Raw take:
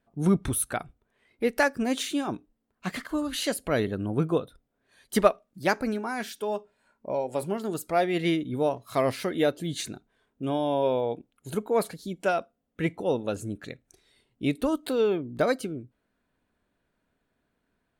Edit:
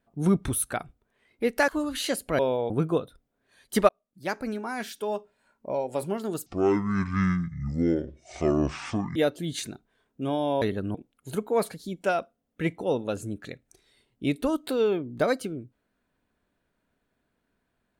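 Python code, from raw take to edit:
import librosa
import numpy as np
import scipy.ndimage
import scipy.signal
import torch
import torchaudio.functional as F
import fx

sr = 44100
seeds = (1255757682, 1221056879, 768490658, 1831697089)

y = fx.edit(x, sr, fx.cut(start_s=1.68, length_s=1.38),
    fx.swap(start_s=3.77, length_s=0.33, other_s=10.83, other_length_s=0.31),
    fx.fade_in_span(start_s=5.29, length_s=1.21, curve='qsin'),
    fx.speed_span(start_s=7.86, length_s=1.51, speed=0.56), tone=tone)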